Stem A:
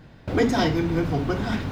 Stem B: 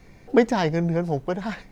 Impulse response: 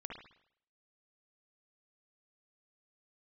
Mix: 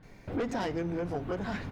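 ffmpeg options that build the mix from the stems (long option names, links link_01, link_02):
-filter_complex "[0:a]lowpass=2900,volume=-9.5dB[link_01];[1:a]equalizer=frequency=100:width_type=o:width=0.82:gain=-13.5,adelay=28,volume=-3dB[link_02];[link_01][link_02]amix=inputs=2:normalize=0,asoftclip=type=tanh:threshold=-20dB,acompressor=threshold=-30dB:ratio=4"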